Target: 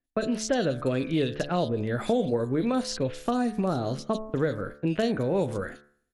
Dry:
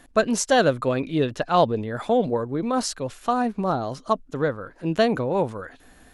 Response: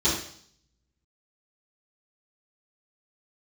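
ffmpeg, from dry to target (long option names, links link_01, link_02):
-filter_complex "[0:a]dynaudnorm=framelen=110:gausssize=5:maxgain=9dB,equalizer=frequency=980:width_type=o:width=1.1:gain=-11.5,agate=range=-32dB:threshold=-36dB:ratio=16:detection=peak,bandreject=frequency=72.71:width_type=h:width=4,bandreject=frequency=145.42:width_type=h:width=4,bandreject=frequency=218.13:width_type=h:width=4,bandreject=frequency=290.84:width_type=h:width=4,bandreject=frequency=363.55:width_type=h:width=4,bandreject=frequency=436.26:width_type=h:width=4,bandreject=frequency=508.97:width_type=h:width=4,bandreject=frequency=581.68:width_type=h:width=4,bandreject=frequency=654.39:width_type=h:width=4,bandreject=frequency=727.1:width_type=h:width=4,bandreject=frequency=799.81:width_type=h:width=4,bandreject=frequency=872.52:width_type=h:width=4,bandreject=frequency=945.23:width_type=h:width=4,bandreject=frequency=1017.94:width_type=h:width=4,bandreject=frequency=1090.65:width_type=h:width=4,bandreject=frequency=1163.36:width_type=h:width=4,bandreject=frequency=1236.07:width_type=h:width=4,bandreject=frequency=1308.78:width_type=h:width=4,bandreject=frequency=1381.49:width_type=h:width=4,bandreject=frequency=1454.2:width_type=h:width=4,bandreject=frequency=1526.91:width_type=h:width=4,bandreject=frequency=1599.62:width_type=h:width=4,bandreject=frequency=1672.33:width_type=h:width=4,bandreject=frequency=1745.04:width_type=h:width=4,bandreject=frequency=1817.75:width_type=h:width=4,bandreject=frequency=1890.46:width_type=h:width=4,bandreject=frequency=1963.17:width_type=h:width=4,bandreject=frequency=2035.88:width_type=h:width=4,bandreject=frequency=2108.59:width_type=h:width=4,bandreject=frequency=2181.3:width_type=h:width=4,bandreject=frequency=2254.01:width_type=h:width=4,acrossover=split=580|5000[link_01][link_02][link_03];[link_01]acompressor=threshold=-26dB:ratio=4[link_04];[link_02]acompressor=threshold=-31dB:ratio=4[link_05];[link_03]acompressor=threshold=-49dB:ratio=4[link_06];[link_04][link_05][link_06]amix=inputs=3:normalize=0,acrossover=split=2900[link_07][link_08];[link_08]adelay=40[link_09];[link_07][link_09]amix=inputs=2:normalize=0"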